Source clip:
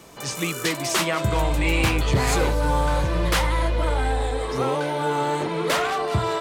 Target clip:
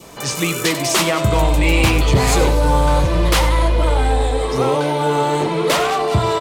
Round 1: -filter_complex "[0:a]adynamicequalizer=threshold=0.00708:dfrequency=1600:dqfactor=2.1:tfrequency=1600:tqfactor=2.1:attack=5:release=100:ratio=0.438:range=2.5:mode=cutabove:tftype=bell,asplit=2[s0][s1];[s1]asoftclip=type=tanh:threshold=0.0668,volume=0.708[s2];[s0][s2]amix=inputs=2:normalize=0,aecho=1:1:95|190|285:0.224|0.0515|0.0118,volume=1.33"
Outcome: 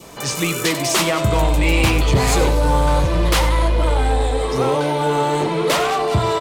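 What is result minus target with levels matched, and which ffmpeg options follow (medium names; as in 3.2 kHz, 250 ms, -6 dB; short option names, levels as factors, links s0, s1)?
saturation: distortion +9 dB
-filter_complex "[0:a]adynamicequalizer=threshold=0.00708:dfrequency=1600:dqfactor=2.1:tfrequency=1600:tqfactor=2.1:attack=5:release=100:ratio=0.438:range=2.5:mode=cutabove:tftype=bell,asplit=2[s0][s1];[s1]asoftclip=type=tanh:threshold=0.168,volume=0.708[s2];[s0][s2]amix=inputs=2:normalize=0,aecho=1:1:95|190|285:0.224|0.0515|0.0118,volume=1.33"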